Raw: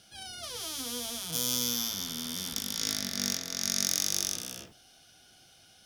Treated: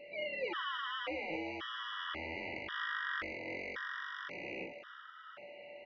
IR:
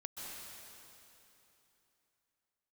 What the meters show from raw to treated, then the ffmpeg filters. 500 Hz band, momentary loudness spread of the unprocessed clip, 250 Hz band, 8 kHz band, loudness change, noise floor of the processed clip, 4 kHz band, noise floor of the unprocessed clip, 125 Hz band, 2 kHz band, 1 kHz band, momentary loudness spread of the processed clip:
+3.5 dB, 11 LU, -7.5 dB, under -40 dB, -9.0 dB, -53 dBFS, -12.0 dB, -59 dBFS, -12.0 dB, +6.0 dB, +5.5 dB, 14 LU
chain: -filter_complex "[0:a]equalizer=f=960:w=1.9:g=-4.5,acompressor=threshold=0.02:ratio=5,volume=18.8,asoftclip=hard,volume=0.0531,highpass=f=450:t=q:w=0.5412,highpass=f=450:t=q:w=1.307,lowpass=f=2200:t=q:w=0.5176,lowpass=f=2200:t=q:w=0.7071,lowpass=f=2200:t=q:w=1.932,afreqshift=-160,crystalizer=i=6.5:c=0,aeval=exprs='val(0)+0.000708*sin(2*PI*580*n/s)':c=same,asplit=2[s0][s1];[s1]asplit=4[s2][s3][s4][s5];[s2]adelay=402,afreqshift=150,volume=0.237[s6];[s3]adelay=804,afreqshift=300,volume=0.1[s7];[s4]adelay=1206,afreqshift=450,volume=0.0417[s8];[s5]adelay=1608,afreqshift=600,volume=0.0176[s9];[s6][s7][s8][s9]amix=inputs=4:normalize=0[s10];[s0][s10]amix=inputs=2:normalize=0,afftfilt=real='re*gt(sin(2*PI*0.93*pts/sr)*(1-2*mod(floor(b*sr/1024/970),2)),0)':imag='im*gt(sin(2*PI*0.93*pts/sr)*(1-2*mod(floor(b*sr/1024/970),2)),0)':win_size=1024:overlap=0.75,volume=3.98"

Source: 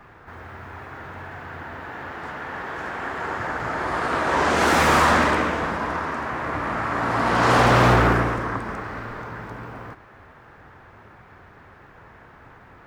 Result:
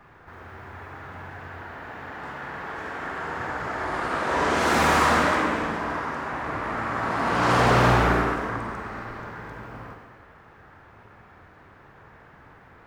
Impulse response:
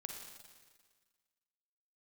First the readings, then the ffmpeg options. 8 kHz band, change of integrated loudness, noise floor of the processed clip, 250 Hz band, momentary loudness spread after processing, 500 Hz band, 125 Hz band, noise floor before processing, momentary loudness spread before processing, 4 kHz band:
-2.5 dB, -2.5 dB, -51 dBFS, -2.5 dB, 21 LU, -2.5 dB, -3.0 dB, -49 dBFS, 21 LU, -2.5 dB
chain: -filter_complex "[1:a]atrim=start_sample=2205,afade=t=out:st=0.36:d=0.01,atrim=end_sample=16317[s0];[0:a][s0]afir=irnorm=-1:irlink=0"

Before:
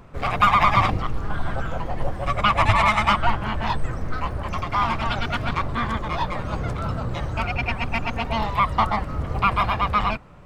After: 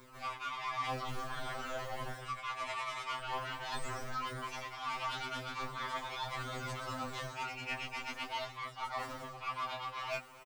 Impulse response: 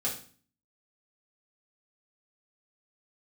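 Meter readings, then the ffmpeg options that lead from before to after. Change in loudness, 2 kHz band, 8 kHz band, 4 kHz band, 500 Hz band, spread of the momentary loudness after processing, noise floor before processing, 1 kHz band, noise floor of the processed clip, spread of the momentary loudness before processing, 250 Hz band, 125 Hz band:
-16.5 dB, -14.5 dB, -5.0 dB, -11.5 dB, -14.5 dB, 3 LU, -31 dBFS, -17.0 dB, -51 dBFS, 11 LU, -20.5 dB, -22.5 dB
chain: -filter_complex "[0:a]aemphasis=mode=production:type=riaa,acrossover=split=7800[s0][s1];[s1]acompressor=threshold=0.00251:ratio=4:attack=1:release=60[s2];[s0][s2]amix=inputs=2:normalize=0,equalizer=f=160:w=6:g=-13,areverse,acompressor=threshold=0.0316:ratio=16,areverse,flanger=delay=16:depth=7.5:speed=0.46,asoftclip=type=tanh:threshold=0.0299,asplit=2[s3][s4];[s4]aecho=0:1:253:0.075[s5];[s3][s5]amix=inputs=2:normalize=0,afftfilt=real='re*2.45*eq(mod(b,6),0)':imag='im*2.45*eq(mod(b,6),0)':win_size=2048:overlap=0.75,volume=1.19"

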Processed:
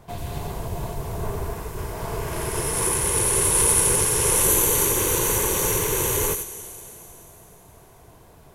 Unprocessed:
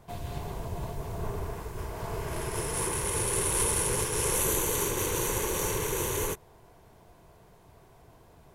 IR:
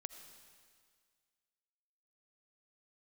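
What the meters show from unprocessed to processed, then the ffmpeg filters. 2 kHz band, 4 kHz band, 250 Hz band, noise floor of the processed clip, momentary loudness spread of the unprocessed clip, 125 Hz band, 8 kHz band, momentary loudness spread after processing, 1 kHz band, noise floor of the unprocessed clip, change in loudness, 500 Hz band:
+6.0 dB, +6.5 dB, +5.5 dB, -50 dBFS, 12 LU, +5.5 dB, +9.5 dB, 16 LU, +6.0 dB, -57 dBFS, +9.5 dB, +6.0 dB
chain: -filter_complex "[0:a]asplit=2[s0][s1];[s1]aemphasis=mode=production:type=75kf[s2];[1:a]atrim=start_sample=2205,asetrate=25578,aresample=44100,adelay=89[s3];[s2][s3]afir=irnorm=-1:irlink=0,volume=0.299[s4];[s0][s4]amix=inputs=2:normalize=0,volume=1.88"

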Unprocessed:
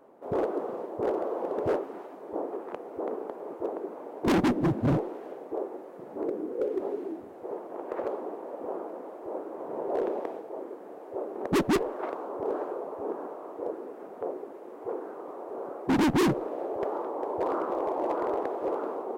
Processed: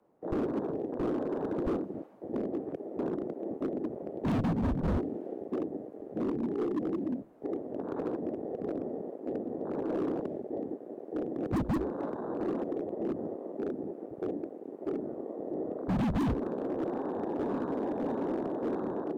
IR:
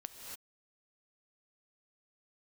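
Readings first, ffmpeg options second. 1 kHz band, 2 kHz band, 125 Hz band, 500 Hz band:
-7.0 dB, -9.0 dB, -0.5 dB, -3.5 dB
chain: -filter_complex "[0:a]afwtdn=0.0251,acrossover=split=360|3000[s0][s1][s2];[s1]acompressor=threshold=0.0141:ratio=6[s3];[s0][s3][s2]amix=inputs=3:normalize=0,acrossover=split=620|2900[s4][s5][s6];[s5]alimiter=level_in=5.31:limit=0.0631:level=0:latency=1:release=56,volume=0.188[s7];[s4][s7][s6]amix=inputs=3:normalize=0,volume=33.5,asoftclip=hard,volume=0.0299,afreqshift=-76,volume=1.58"

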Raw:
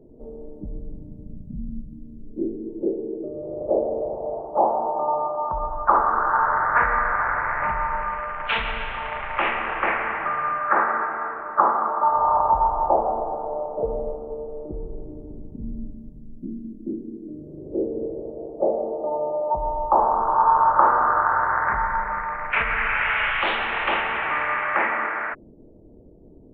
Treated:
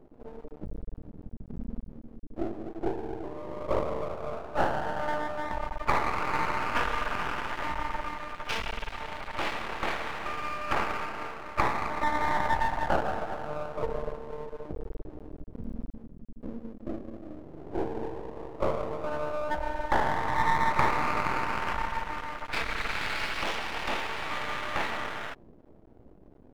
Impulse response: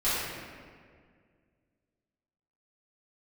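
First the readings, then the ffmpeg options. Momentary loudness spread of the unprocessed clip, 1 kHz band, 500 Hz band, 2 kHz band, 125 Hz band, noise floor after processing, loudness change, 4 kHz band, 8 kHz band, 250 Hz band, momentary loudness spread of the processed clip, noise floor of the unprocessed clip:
18 LU, -10.0 dB, -7.5 dB, -8.0 dB, 0.0 dB, -53 dBFS, -9.0 dB, -2.0 dB, no reading, -5.0 dB, 16 LU, -46 dBFS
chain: -af "equalizer=f=1600:t=o:w=1.5:g=-5,aeval=exprs='max(val(0),0)':c=same,volume=0.841"

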